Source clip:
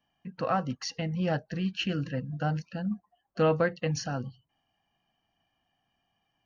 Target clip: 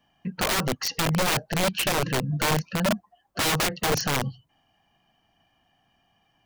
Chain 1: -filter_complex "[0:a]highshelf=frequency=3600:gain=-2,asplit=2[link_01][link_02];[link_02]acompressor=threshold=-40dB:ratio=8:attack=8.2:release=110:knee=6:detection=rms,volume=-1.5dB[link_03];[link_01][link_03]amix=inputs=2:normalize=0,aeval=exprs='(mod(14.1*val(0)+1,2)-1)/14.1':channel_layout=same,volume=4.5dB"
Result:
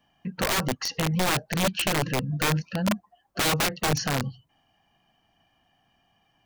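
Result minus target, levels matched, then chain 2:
downward compressor: peak gain reduction +7 dB
-filter_complex "[0:a]highshelf=frequency=3600:gain=-2,asplit=2[link_01][link_02];[link_02]acompressor=threshold=-32dB:ratio=8:attack=8.2:release=110:knee=6:detection=rms,volume=-1.5dB[link_03];[link_01][link_03]amix=inputs=2:normalize=0,aeval=exprs='(mod(14.1*val(0)+1,2)-1)/14.1':channel_layout=same,volume=4.5dB"

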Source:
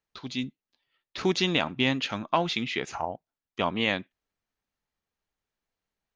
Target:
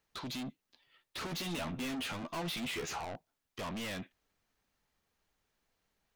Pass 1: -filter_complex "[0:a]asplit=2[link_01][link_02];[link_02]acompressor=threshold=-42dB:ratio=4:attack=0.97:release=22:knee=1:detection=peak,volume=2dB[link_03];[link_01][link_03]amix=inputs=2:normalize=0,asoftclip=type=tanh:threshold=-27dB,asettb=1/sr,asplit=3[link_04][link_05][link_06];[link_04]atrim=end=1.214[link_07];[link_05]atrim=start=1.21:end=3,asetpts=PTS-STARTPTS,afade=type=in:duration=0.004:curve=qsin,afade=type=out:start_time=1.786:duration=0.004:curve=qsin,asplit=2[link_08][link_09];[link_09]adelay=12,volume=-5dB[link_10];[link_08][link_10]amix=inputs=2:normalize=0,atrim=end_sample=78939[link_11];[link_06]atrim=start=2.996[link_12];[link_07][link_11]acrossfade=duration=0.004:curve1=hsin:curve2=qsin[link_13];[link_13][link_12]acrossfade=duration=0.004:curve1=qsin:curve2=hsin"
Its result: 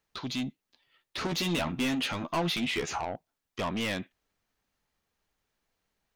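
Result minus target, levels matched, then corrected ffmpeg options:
soft clipping: distortion −5 dB
-filter_complex "[0:a]asplit=2[link_01][link_02];[link_02]acompressor=threshold=-42dB:ratio=4:attack=0.97:release=22:knee=1:detection=peak,volume=2dB[link_03];[link_01][link_03]amix=inputs=2:normalize=0,asoftclip=type=tanh:threshold=-38dB,asettb=1/sr,asplit=3[link_04][link_05][link_06];[link_04]atrim=end=1.214[link_07];[link_05]atrim=start=1.21:end=3,asetpts=PTS-STARTPTS,afade=type=in:duration=0.004:curve=qsin,afade=type=out:start_time=1.786:duration=0.004:curve=qsin,asplit=2[link_08][link_09];[link_09]adelay=12,volume=-5dB[link_10];[link_08][link_10]amix=inputs=2:normalize=0,atrim=end_sample=78939[link_11];[link_06]atrim=start=2.996[link_12];[link_07][link_11]acrossfade=duration=0.004:curve1=hsin:curve2=qsin[link_13];[link_13][link_12]acrossfade=duration=0.004:curve1=qsin:curve2=hsin"

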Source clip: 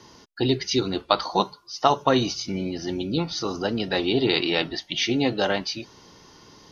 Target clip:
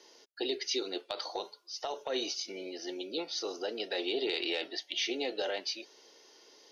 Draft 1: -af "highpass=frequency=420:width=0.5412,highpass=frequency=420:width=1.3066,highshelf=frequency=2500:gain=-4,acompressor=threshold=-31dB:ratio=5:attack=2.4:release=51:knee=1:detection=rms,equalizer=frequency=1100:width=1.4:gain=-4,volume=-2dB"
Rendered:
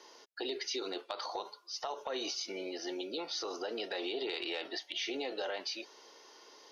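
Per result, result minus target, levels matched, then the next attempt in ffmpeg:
downward compressor: peak gain reduction +6 dB; 1,000 Hz band +3.5 dB
-af "highpass=frequency=420:width=0.5412,highpass=frequency=420:width=1.3066,highshelf=frequency=2500:gain=-4,acompressor=threshold=-23.5dB:ratio=5:attack=2.4:release=51:knee=1:detection=rms,equalizer=frequency=1100:width=1.4:gain=-4,volume=-2dB"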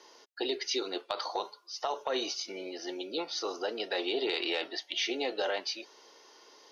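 1,000 Hz band +4.5 dB
-af "highpass=frequency=420:width=0.5412,highpass=frequency=420:width=1.3066,highshelf=frequency=2500:gain=-4,acompressor=threshold=-23.5dB:ratio=5:attack=2.4:release=51:knee=1:detection=rms,equalizer=frequency=1100:width=1.4:gain=-13.5,volume=-2dB"

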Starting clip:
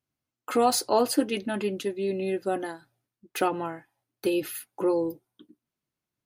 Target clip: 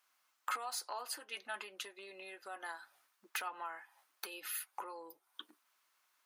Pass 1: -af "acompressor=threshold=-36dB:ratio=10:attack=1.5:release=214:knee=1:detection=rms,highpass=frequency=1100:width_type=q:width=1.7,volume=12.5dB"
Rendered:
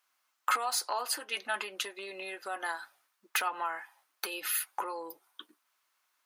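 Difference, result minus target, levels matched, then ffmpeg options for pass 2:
downward compressor: peak gain reduction −9.5 dB
-af "acompressor=threshold=-46.5dB:ratio=10:attack=1.5:release=214:knee=1:detection=rms,highpass=frequency=1100:width_type=q:width=1.7,volume=12.5dB"

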